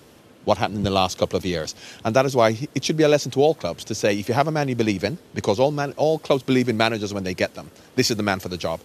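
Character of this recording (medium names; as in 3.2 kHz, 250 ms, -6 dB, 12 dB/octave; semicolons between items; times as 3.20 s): noise floor -50 dBFS; spectral tilt -5.0 dB/octave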